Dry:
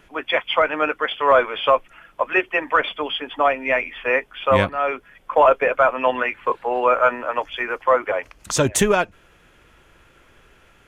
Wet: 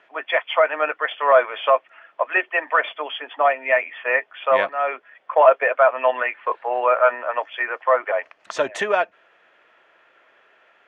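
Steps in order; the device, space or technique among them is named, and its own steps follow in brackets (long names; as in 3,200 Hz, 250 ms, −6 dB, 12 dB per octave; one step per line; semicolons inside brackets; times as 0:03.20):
tin-can telephone (band-pass filter 550–2,900 Hz; hollow resonant body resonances 650/1,800 Hz, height 7 dB, ringing for 25 ms)
level −1 dB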